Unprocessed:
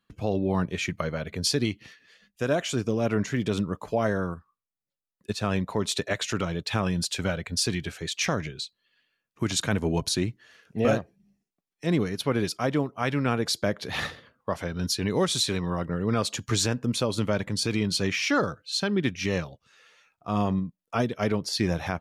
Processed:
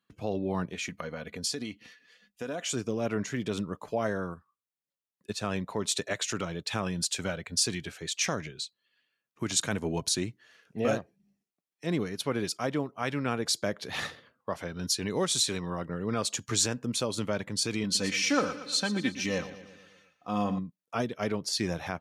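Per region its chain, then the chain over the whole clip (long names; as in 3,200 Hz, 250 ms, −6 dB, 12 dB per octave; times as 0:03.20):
0:00.73–0:02.65: comb filter 4.1 ms, depth 43% + downward compressor 3 to 1, threshold −28 dBFS
0:17.83–0:20.59: comb filter 3.9 ms, depth 59% + repeating echo 117 ms, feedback 57%, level −13.5 dB
whole clip: high-pass filter 140 Hz 6 dB per octave; dynamic equaliser 7,600 Hz, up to +7 dB, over −44 dBFS, Q 1.1; level −4 dB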